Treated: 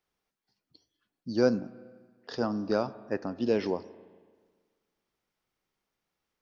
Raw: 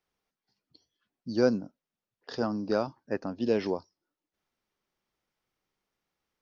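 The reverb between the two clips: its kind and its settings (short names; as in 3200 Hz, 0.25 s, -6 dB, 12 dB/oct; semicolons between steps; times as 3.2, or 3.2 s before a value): spring tank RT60 1.6 s, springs 33/39 ms, chirp 65 ms, DRR 16 dB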